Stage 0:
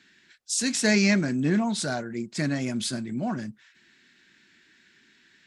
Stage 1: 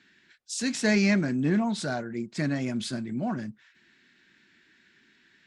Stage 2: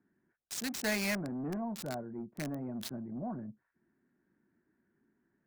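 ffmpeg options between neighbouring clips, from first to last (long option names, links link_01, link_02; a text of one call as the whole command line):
ffmpeg -i in.wav -af "lowpass=frequency=3600:poles=1,acontrast=73,volume=-7.5dB" out.wav
ffmpeg -i in.wav -filter_complex "[0:a]acrossover=split=470|1100[link_01][link_02][link_03];[link_01]asoftclip=type=tanh:threshold=-29.5dB[link_04];[link_03]acrusher=bits=4:mix=0:aa=0.000001[link_05];[link_04][link_02][link_05]amix=inputs=3:normalize=0,volume=-6.5dB" out.wav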